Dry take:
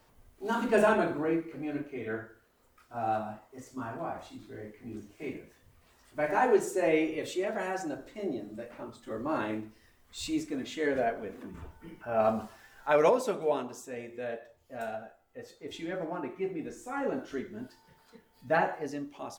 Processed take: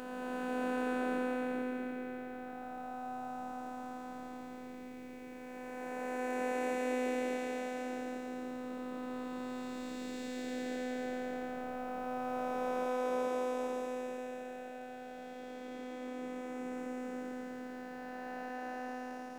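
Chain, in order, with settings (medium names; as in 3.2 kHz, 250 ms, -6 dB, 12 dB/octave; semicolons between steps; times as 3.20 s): spectral blur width 1170 ms; robot voice 252 Hz; trim +2.5 dB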